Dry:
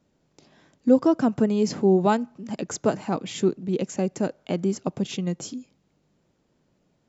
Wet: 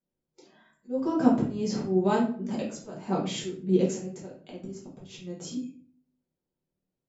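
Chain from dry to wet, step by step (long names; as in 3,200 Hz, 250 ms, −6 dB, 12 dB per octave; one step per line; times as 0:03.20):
noise reduction from a noise print of the clip's start 22 dB
volume swells 433 ms
rectangular room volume 41 cubic metres, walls mixed, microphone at 1.2 metres
level −6 dB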